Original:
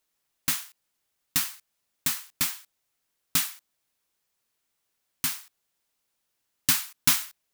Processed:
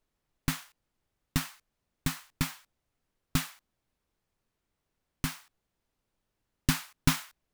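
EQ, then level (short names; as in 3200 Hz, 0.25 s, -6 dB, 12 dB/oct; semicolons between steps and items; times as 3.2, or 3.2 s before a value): tilt -3.5 dB/oct; 0.0 dB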